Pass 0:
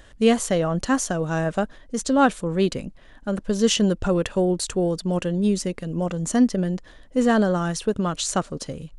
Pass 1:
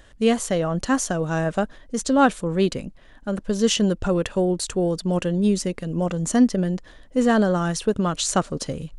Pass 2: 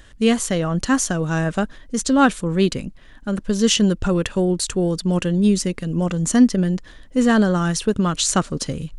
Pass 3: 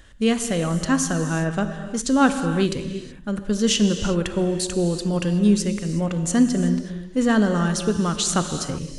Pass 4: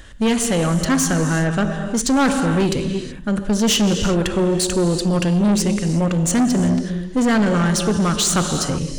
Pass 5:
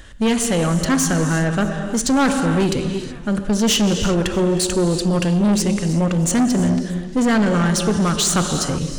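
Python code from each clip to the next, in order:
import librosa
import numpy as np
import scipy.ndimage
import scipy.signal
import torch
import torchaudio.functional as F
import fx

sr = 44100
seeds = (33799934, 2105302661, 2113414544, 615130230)

y1 = fx.rider(x, sr, range_db=5, speed_s=2.0)
y2 = fx.peak_eq(y1, sr, hz=630.0, db=-6.5, octaves=1.3)
y2 = y2 * 10.0 ** (4.5 / 20.0)
y3 = fx.rev_gated(y2, sr, seeds[0], gate_ms=400, shape='flat', drr_db=7.5)
y3 = y3 * 10.0 ** (-3.0 / 20.0)
y4 = 10.0 ** (-21.0 / 20.0) * np.tanh(y3 / 10.0 ** (-21.0 / 20.0))
y4 = y4 * 10.0 ** (8.0 / 20.0)
y5 = fx.echo_warbled(y4, sr, ms=313, feedback_pct=57, rate_hz=2.8, cents=103, wet_db=-20.0)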